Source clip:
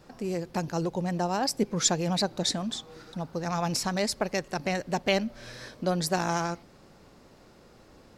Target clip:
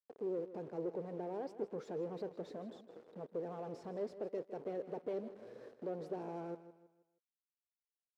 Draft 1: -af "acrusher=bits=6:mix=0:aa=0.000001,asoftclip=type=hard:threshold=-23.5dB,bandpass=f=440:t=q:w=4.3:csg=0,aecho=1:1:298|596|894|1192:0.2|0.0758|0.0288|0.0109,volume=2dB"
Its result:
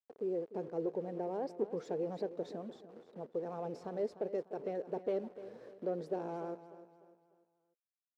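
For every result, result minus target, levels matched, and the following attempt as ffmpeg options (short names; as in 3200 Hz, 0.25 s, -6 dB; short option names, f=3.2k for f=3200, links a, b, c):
echo 0.139 s late; hard clip: distortion -6 dB
-af "acrusher=bits=6:mix=0:aa=0.000001,asoftclip=type=hard:threshold=-23.5dB,bandpass=f=440:t=q:w=4.3:csg=0,aecho=1:1:159|318|477|636:0.2|0.0758|0.0288|0.0109,volume=2dB"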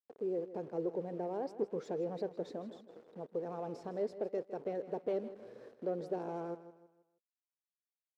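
hard clip: distortion -6 dB
-af "acrusher=bits=6:mix=0:aa=0.000001,asoftclip=type=hard:threshold=-30dB,bandpass=f=440:t=q:w=4.3:csg=0,aecho=1:1:159|318|477|636:0.2|0.0758|0.0288|0.0109,volume=2dB"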